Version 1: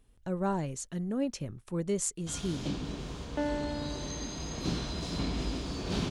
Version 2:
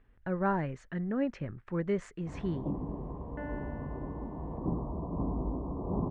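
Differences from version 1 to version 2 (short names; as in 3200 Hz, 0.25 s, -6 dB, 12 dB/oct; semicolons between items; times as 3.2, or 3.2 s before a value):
first sound: add steep low-pass 1100 Hz 96 dB/oct; second sound -11.0 dB; master: add synth low-pass 1800 Hz, resonance Q 2.7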